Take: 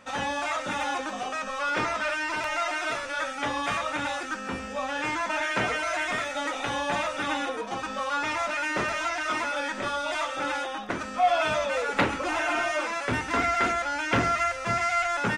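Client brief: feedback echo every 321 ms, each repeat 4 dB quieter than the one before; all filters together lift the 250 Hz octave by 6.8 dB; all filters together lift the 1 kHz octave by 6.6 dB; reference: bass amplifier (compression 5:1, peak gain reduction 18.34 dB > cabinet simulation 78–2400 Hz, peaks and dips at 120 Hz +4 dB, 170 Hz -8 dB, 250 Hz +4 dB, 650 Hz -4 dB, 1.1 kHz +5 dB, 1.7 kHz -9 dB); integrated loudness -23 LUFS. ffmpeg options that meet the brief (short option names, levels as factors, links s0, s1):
-af "equalizer=f=250:t=o:g=6,equalizer=f=1000:t=o:g=8,aecho=1:1:321|642|963|1284|1605|1926|2247|2568|2889:0.631|0.398|0.25|0.158|0.0994|0.0626|0.0394|0.0249|0.0157,acompressor=threshold=0.0224:ratio=5,highpass=f=78:w=0.5412,highpass=f=78:w=1.3066,equalizer=f=120:t=q:w=4:g=4,equalizer=f=170:t=q:w=4:g=-8,equalizer=f=250:t=q:w=4:g=4,equalizer=f=650:t=q:w=4:g=-4,equalizer=f=1100:t=q:w=4:g=5,equalizer=f=1700:t=q:w=4:g=-9,lowpass=f=2400:w=0.5412,lowpass=f=2400:w=1.3066,volume=3.76"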